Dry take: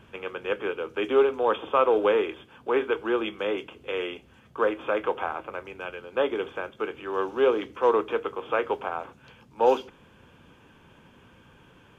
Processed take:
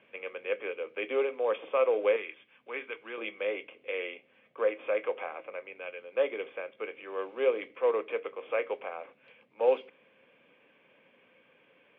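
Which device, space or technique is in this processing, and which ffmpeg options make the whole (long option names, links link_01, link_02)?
phone earpiece: -filter_complex "[0:a]highpass=80,highpass=340,equalizer=frequency=360:width_type=q:width=4:gain=-5,equalizer=frequency=540:width_type=q:width=4:gain=7,equalizer=frequency=900:width_type=q:width=4:gain=-8,equalizer=frequency=1400:width_type=q:width=4:gain=-8,equalizer=frequency=2200:width_type=q:width=4:gain=10,lowpass=frequency=3100:width=0.5412,lowpass=frequency=3100:width=1.3066,asettb=1/sr,asplit=3[link_01][link_02][link_03];[link_01]atrim=end=2.164[link_04];[link_02]atrim=start=2.16:end=3.18,asetpts=PTS-STARTPTS,afade=type=in:duration=0.004:curve=qsin,afade=type=out:start_time=1.016:duration=0.004:curve=qsin,equalizer=frequency=510:width=0.73:gain=-11[link_05];[link_03]atrim=start=3.176[link_06];[link_04][link_05]acrossfade=duration=0.004:curve1=hsin:curve2=qsin[link_07];[link_07][link_06]acrossfade=duration=0.004:curve1=qsin:curve2=hsin,volume=-6dB"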